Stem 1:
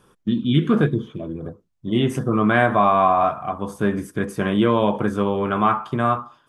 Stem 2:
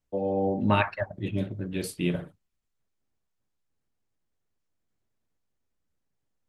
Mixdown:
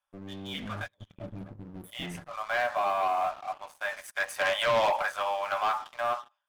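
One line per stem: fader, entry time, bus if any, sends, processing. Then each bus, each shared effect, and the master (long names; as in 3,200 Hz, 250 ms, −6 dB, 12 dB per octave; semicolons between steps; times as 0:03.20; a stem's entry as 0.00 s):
0:03.54 −16.5 dB → 0:04.10 −4.5 dB → 0:05.01 −4.5 dB → 0:05.76 −14 dB, 0.00 s, no send, Chebyshev high-pass with heavy ripple 560 Hz, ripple 6 dB
−14.5 dB, 0.00 s, no send, inverse Chebyshev band-stop filter 960–4,500 Hz, stop band 60 dB; tube saturation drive 33 dB, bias 0.55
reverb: not used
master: leveller curve on the samples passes 3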